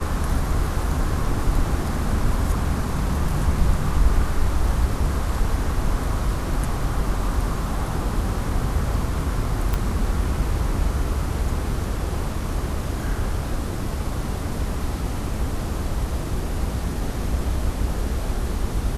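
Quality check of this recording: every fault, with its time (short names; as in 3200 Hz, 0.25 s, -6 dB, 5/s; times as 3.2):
9.74 pop -9 dBFS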